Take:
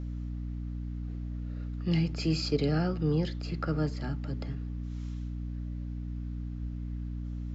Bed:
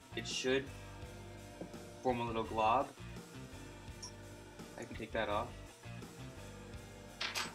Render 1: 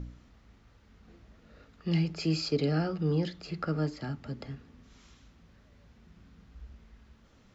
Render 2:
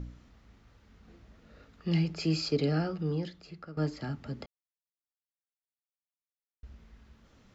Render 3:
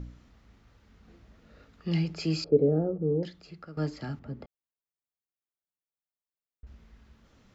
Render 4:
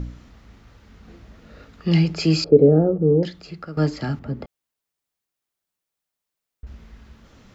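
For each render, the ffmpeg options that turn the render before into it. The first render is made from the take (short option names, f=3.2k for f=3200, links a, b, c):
-af "bandreject=f=60:t=h:w=4,bandreject=f=120:t=h:w=4,bandreject=f=180:t=h:w=4,bandreject=f=240:t=h:w=4,bandreject=f=300:t=h:w=4"
-filter_complex "[0:a]asplit=4[a][b][c][d];[a]atrim=end=3.77,asetpts=PTS-STARTPTS,afade=t=out:st=2.69:d=1.08:silence=0.141254[e];[b]atrim=start=3.77:end=4.46,asetpts=PTS-STARTPTS,afade=t=in:d=0.004:c=hsin:silence=0.141254,afade=t=out:st=0.686:d=0.004:c=hsin[f];[c]atrim=start=4.46:end=6.63,asetpts=PTS-STARTPTS,volume=0[g];[d]atrim=start=6.63,asetpts=PTS-STARTPTS,afade=t=in:d=0.004:c=hsin[h];[e][f][g][h]concat=n=4:v=0:a=1"
-filter_complex "[0:a]asettb=1/sr,asplit=3[a][b][c];[a]atrim=end=2.444[d];[b]atrim=start=2.44:end=3.23,asetpts=PTS-STARTPTS,afade=t=in:d=0.004:c=qsin,afade=t=out:st=0.786:d=0.004:c=qsin,lowpass=f=490:t=q:w=3[e];[c]atrim=start=3.226[f];[d][e]acrossfade=d=0.004:c1=hsin:c2=qsin[g];[g][f]acrossfade=d=0.004:c1=qsin:c2=hsin,asettb=1/sr,asplit=3[h][i][j];[h]atrim=end=4.194[k];[i]atrim=start=4.19:end=6.67,asetpts=PTS-STARTPTS,afade=t=in:d=0.004:c=qsin,afade=t=out:st=2.476:d=0.004:c=qsin,equalizer=f=6.6k:w=0.34:g=-15[l];[j]atrim=start=6.666[m];[k][l]acrossfade=d=0.004:c1=hsin:c2=qsin[n];[n][m]acrossfade=d=0.004:c1=qsin:c2=hsin"
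-af "volume=10.5dB,alimiter=limit=-2dB:level=0:latency=1"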